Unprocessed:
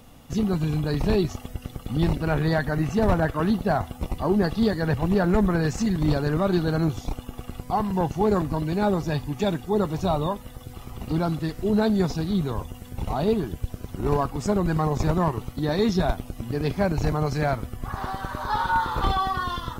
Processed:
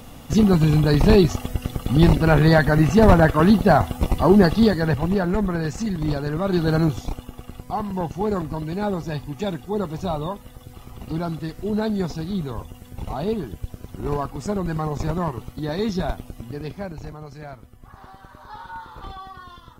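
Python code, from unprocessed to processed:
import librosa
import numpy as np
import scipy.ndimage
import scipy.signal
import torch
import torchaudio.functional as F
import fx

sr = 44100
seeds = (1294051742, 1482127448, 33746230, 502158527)

y = fx.gain(x, sr, db=fx.line((4.41, 8.0), (5.34, -1.5), (6.39, -1.5), (6.73, 5.0), (7.39, -2.0), (16.34, -2.0), (17.2, -13.5)))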